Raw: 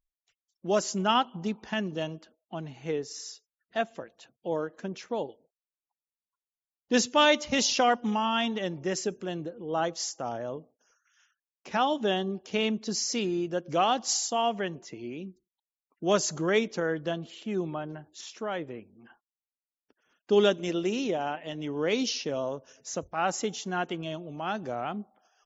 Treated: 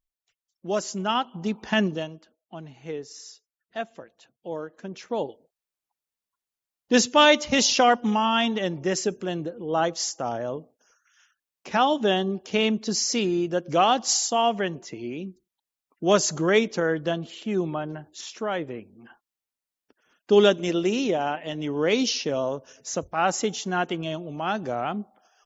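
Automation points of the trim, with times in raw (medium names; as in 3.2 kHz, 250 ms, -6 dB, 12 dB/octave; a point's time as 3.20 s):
1.22 s -0.5 dB
1.84 s +9.5 dB
2.09 s -2.5 dB
4.78 s -2.5 dB
5.24 s +5 dB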